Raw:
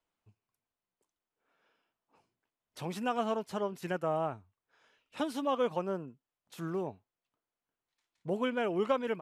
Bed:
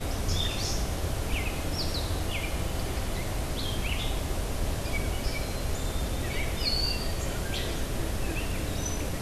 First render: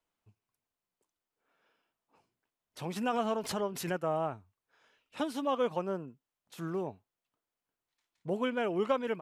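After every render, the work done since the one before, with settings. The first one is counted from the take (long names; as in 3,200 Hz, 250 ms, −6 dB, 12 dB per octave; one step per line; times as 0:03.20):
0:02.96–0:04.01: background raised ahead of every attack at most 66 dB per second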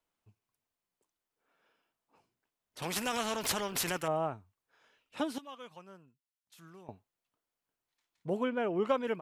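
0:02.82–0:04.08: every bin compressed towards the loudest bin 2 to 1
0:05.38–0:06.89: guitar amp tone stack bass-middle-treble 5-5-5
0:08.43–0:08.86: high-shelf EQ 3,500 Hz −11 dB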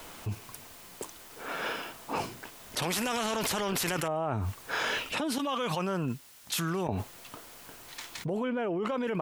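brickwall limiter −26 dBFS, peak gain reduction 9 dB
envelope flattener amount 100%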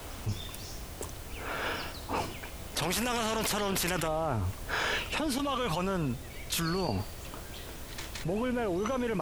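mix in bed −13 dB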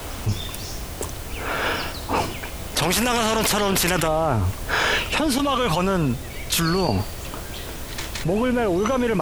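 level +10 dB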